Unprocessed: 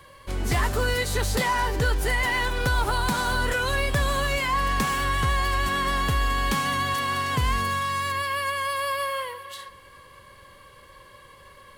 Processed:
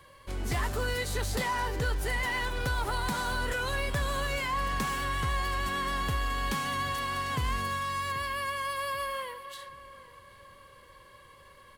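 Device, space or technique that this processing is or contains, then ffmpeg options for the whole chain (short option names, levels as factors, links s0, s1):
parallel distortion: -filter_complex "[0:a]asplit=2[s0][s1];[s1]asoftclip=type=hard:threshold=0.0447,volume=0.335[s2];[s0][s2]amix=inputs=2:normalize=0,asplit=2[s3][s4];[s4]adelay=784,lowpass=f=2000:p=1,volume=0.158,asplit=2[s5][s6];[s6]adelay=784,lowpass=f=2000:p=1,volume=0.42,asplit=2[s7][s8];[s8]adelay=784,lowpass=f=2000:p=1,volume=0.42,asplit=2[s9][s10];[s10]adelay=784,lowpass=f=2000:p=1,volume=0.42[s11];[s3][s5][s7][s9][s11]amix=inputs=5:normalize=0,volume=0.398"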